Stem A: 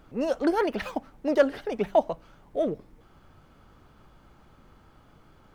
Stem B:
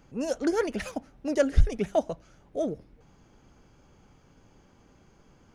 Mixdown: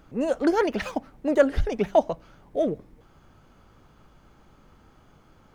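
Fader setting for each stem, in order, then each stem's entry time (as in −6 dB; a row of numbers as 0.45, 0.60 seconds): −0.5, −5.5 decibels; 0.00, 0.00 seconds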